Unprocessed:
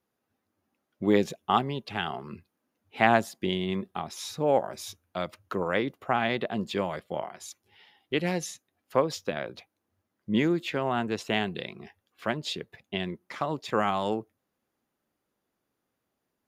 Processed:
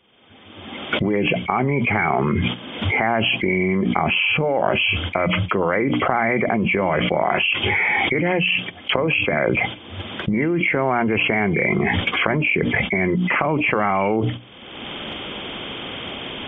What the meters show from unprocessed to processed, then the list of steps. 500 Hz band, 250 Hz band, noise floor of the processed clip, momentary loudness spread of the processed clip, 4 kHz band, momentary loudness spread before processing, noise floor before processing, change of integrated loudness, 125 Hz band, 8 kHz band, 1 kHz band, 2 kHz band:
+8.0 dB, +9.0 dB, −42 dBFS, 11 LU, +12.5 dB, 14 LU, −82 dBFS, +9.5 dB, +12.5 dB, below −30 dB, +7.5 dB, +15.0 dB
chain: hearing-aid frequency compression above 2,000 Hz 4 to 1
camcorder AGC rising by 35 dB per second
noise gate −46 dBFS, range −14 dB
mains-hum notches 60/120/180/240/300 Hz
envelope flattener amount 100%
level −7.5 dB

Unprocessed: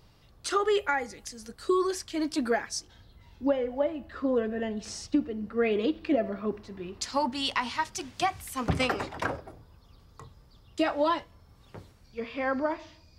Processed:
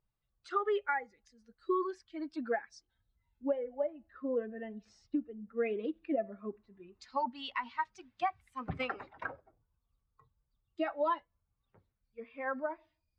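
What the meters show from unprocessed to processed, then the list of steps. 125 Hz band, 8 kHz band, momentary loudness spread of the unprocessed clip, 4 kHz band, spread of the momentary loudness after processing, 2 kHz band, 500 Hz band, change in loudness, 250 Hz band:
−12.5 dB, below −25 dB, 11 LU, −14.5 dB, 16 LU, −7.0 dB, −7.0 dB, −7.0 dB, −9.5 dB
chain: spectral dynamics exaggerated over time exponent 1.5
low-pass filter 2,000 Hz 12 dB per octave
low-shelf EQ 270 Hz −10.5 dB
level −2 dB

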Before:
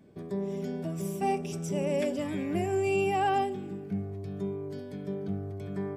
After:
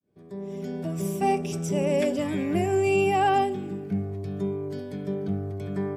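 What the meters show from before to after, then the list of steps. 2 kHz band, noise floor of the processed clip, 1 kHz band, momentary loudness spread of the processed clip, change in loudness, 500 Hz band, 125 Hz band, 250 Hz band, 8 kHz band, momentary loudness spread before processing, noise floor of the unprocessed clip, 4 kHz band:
+5.0 dB, −48 dBFS, +5.0 dB, 12 LU, +5.0 dB, +5.0 dB, +4.5 dB, +4.5 dB, +5.0 dB, 10 LU, −42 dBFS, +5.0 dB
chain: fade in at the beginning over 1.04 s
level +5 dB

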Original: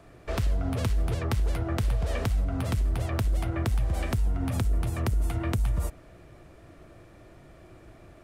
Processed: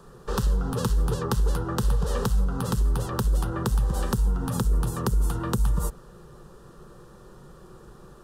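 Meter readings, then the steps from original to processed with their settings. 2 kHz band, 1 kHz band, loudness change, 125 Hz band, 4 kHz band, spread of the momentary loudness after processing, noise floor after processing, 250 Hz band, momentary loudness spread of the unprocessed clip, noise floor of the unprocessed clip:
−0.5 dB, +5.0 dB, +2.5 dB, +1.0 dB, +3.0 dB, 1 LU, −49 dBFS, +3.5 dB, 1 LU, −52 dBFS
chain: phaser with its sweep stopped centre 440 Hz, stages 8
level +7.5 dB

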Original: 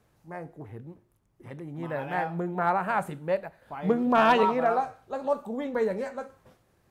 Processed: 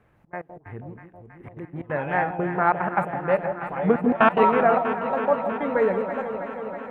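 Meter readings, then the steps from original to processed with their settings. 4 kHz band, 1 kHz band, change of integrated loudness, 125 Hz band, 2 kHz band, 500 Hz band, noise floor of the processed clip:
−4.0 dB, +4.0 dB, +4.0 dB, +4.5 dB, +5.5 dB, +5.0 dB, −58 dBFS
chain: high shelf with overshoot 3,300 Hz −13.5 dB, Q 1.5
gate pattern "xxx.x.x.xxxxx.x" 182 BPM −24 dB
on a send: delay that swaps between a low-pass and a high-pass 161 ms, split 850 Hz, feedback 88%, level −8.5 dB
on the sum: level +4.5 dB

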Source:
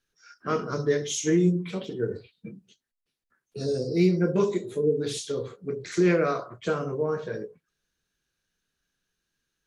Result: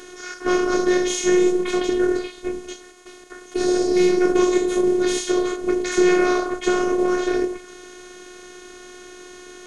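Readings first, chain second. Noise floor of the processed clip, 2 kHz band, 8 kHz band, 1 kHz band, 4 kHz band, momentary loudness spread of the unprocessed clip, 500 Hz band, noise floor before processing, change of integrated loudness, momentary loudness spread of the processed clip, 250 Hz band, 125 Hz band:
−43 dBFS, +9.5 dB, +8.0 dB, +9.0 dB, +8.5 dB, 15 LU, +7.5 dB, −84 dBFS, +6.5 dB, 13 LU, +7.5 dB, −11.0 dB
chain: compressor on every frequency bin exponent 0.4
phases set to zero 360 Hz
level +3.5 dB

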